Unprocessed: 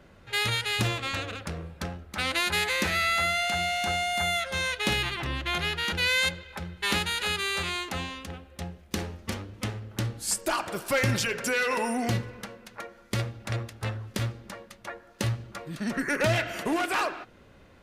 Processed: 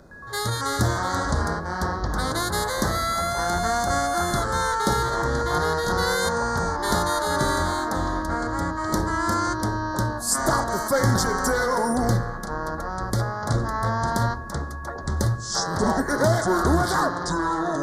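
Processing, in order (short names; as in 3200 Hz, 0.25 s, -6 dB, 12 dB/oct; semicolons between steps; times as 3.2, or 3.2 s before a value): whine 2500 Hz -38 dBFS; echoes that change speed 0.112 s, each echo -7 st, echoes 2; Butterworth band-stop 2600 Hz, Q 0.89; gain +5 dB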